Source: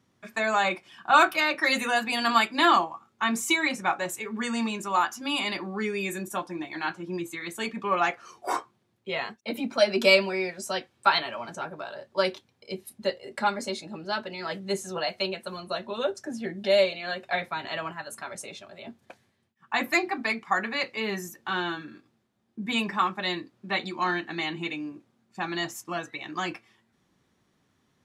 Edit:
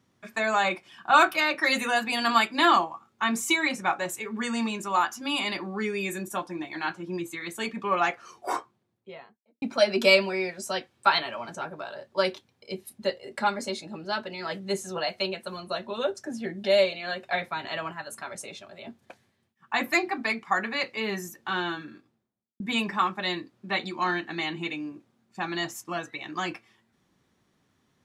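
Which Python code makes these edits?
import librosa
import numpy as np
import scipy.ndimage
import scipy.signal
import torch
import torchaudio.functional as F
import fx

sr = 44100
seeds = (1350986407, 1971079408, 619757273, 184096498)

y = fx.studio_fade_out(x, sr, start_s=8.32, length_s=1.3)
y = fx.studio_fade_out(y, sr, start_s=21.85, length_s=0.75)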